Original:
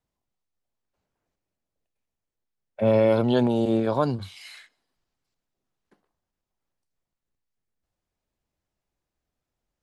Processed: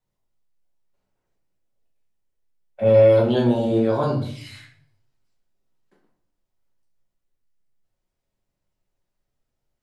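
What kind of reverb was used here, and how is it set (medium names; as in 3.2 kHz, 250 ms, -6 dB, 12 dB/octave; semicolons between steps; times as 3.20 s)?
simulated room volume 69 m³, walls mixed, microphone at 1 m; trim -3 dB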